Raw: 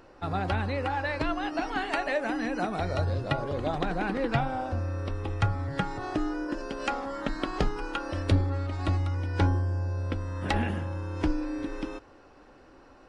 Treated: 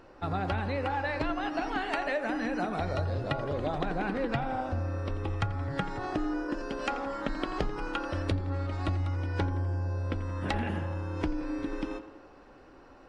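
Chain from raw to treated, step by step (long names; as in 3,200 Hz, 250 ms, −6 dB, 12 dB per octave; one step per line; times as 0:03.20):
high-shelf EQ 5,700 Hz −5.5 dB
on a send: tape delay 85 ms, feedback 66%, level −12 dB, low-pass 3,200 Hz
on the sum: downward compressor 6 to 1, threshold −26 dBFS, peak gain reduction 8.5 dB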